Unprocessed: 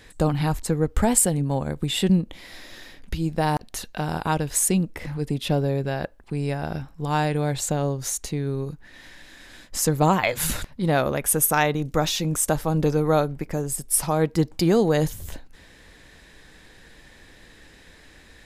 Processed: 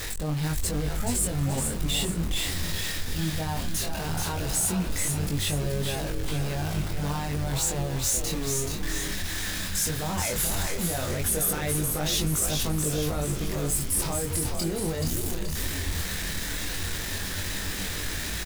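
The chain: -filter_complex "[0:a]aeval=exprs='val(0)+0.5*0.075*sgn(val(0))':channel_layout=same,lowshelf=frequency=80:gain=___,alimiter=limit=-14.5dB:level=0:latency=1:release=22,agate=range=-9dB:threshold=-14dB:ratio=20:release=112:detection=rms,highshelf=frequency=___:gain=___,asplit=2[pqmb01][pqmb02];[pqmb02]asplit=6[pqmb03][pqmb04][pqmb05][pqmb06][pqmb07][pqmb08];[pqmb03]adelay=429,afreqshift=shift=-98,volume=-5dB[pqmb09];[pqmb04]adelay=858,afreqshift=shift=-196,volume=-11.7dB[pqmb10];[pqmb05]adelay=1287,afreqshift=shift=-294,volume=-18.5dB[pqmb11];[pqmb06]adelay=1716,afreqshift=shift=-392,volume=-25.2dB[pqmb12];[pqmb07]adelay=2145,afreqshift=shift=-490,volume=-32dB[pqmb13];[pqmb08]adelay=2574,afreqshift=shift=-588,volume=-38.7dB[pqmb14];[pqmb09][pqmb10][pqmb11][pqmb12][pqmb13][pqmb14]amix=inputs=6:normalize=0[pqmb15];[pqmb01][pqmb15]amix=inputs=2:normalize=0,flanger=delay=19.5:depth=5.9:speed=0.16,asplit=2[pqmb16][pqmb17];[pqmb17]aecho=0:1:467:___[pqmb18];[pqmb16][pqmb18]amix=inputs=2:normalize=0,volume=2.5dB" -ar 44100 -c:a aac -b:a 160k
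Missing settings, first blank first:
7.5, 3k, 7.5, 0.282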